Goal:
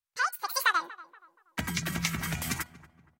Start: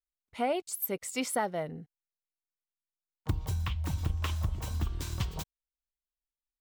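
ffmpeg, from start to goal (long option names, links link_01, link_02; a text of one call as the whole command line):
ffmpeg -i in.wav -filter_complex "[0:a]dynaudnorm=framelen=380:gausssize=5:maxgain=6dB,lowshelf=frequency=390:width_type=q:width=1.5:gain=-13,asplit=2[link_01][link_02];[link_02]acompressor=threshold=-36dB:ratio=10,volume=2dB[link_03];[link_01][link_03]amix=inputs=2:normalize=0,bandreject=frequency=235.5:width_type=h:width=4,bandreject=frequency=471:width_type=h:width=4,bandreject=frequency=706.5:width_type=h:width=4,bandreject=frequency=942:width_type=h:width=4,bandreject=frequency=1177.5:width_type=h:width=4,bandreject=frequency=1413:width_type=h:width=4,bandreject=frequency=1648.5:width_type=h:width=4,bandreject=frequency=1884:width_type=h:width=4,bandreject=frequency=2119.5:width_type=h:width=4,asetrate=91287,aresample=44100,asplit=2[link_04][link_05];[link_05]adelay=238,lowpass=frequency=1400:poles=1,volume=-17dB,asplit=2[link_06][link_07];[link_07]adelay=238,lowpass=frequency=1400:poles=1,volume=0.46,asplit=2[link_08][link_09];[link_09]adelay=238,lowpass=frequency=1400:poles=1,volume=0.46,asplit=2[link_10][link_11];[link_11]adelay=238,lowpass=frequency=1400:poles=1,volume=0.46[link_12];[link_06][link_08][link_10][link_12]amix=inputs=4:normalize=0[link_13];[link_04][link_13]amix=inputs=2:normalize=0,volume=-2dB" -ar 44100 -c:a aac -b:a 48k out.aac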